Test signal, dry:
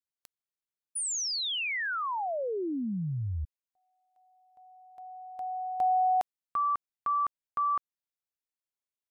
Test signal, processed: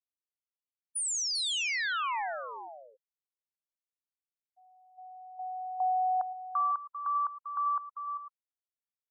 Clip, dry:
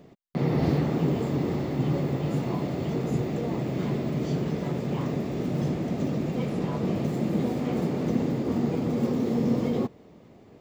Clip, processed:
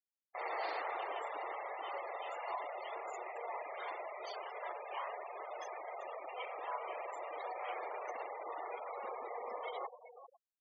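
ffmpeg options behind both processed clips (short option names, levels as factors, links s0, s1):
-af "highpass=f=740:w=0.5412,highpass=f=740:w=1.3066,aecho=1:1:115|395|502:0.168|0.299|0.15,afftfilt=real='re*gte(hypot(re,im),0.0112)':imag='im*gte(hypot(re,im),0.0112)':win_size=1024:overlap=0.75"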